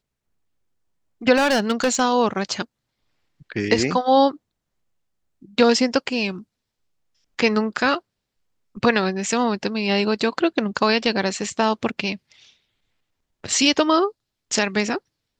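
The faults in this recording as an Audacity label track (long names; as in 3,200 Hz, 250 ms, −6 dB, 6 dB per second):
1.360000	2.010000	clipping −15 dBFS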